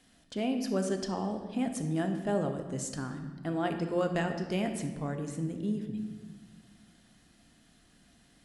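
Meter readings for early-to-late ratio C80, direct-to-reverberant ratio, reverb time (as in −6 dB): 9.0 dB, 5.0 dB, 1.4 s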